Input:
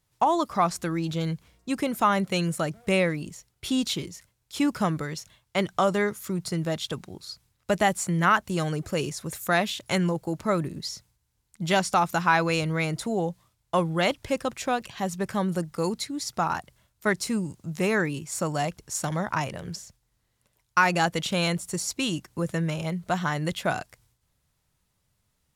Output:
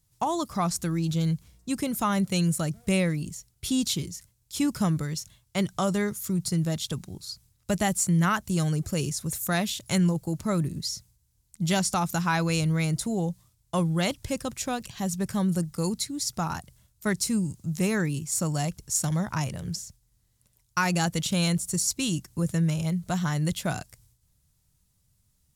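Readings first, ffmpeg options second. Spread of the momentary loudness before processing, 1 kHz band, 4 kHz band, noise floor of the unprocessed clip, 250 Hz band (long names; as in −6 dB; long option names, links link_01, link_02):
11 LU, −6.0 dB, −0.5 dB, −74 dBFS, +1.5 dB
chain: -af "bass=frequency=250:gain=12,treble=frequency=4000:gain=12,volume=-6dB"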